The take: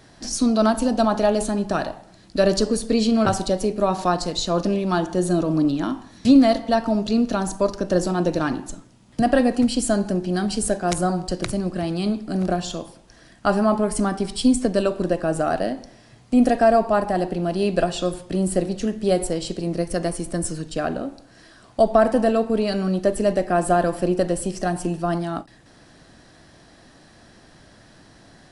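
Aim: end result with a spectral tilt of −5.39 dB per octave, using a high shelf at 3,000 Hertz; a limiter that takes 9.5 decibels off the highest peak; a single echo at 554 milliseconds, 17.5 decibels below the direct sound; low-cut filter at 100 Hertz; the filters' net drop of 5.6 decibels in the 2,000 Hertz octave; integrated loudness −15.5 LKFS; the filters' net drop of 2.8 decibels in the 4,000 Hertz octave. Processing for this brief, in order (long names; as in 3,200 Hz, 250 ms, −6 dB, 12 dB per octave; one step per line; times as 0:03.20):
high-pass filter 100 Hz
parametric band 2,000 Hz −8.5 dB
high-shelf EQ 3,000 Hz +4 dB
parametric band 4,000 Hz −4.5 dB
brickwall limiter −13 dBFS
single-tap delay 554 ms −17.5 dB
level +8.5 dB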